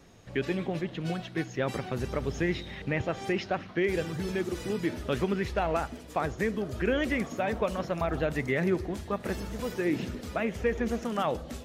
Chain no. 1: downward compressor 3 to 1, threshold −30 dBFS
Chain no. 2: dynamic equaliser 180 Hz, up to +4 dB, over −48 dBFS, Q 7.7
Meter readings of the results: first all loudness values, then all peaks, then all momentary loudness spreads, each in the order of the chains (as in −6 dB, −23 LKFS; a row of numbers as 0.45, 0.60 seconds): −35.0, −30.5 LKFS; −18.0, −16.0 dBFS; 3, 5 LU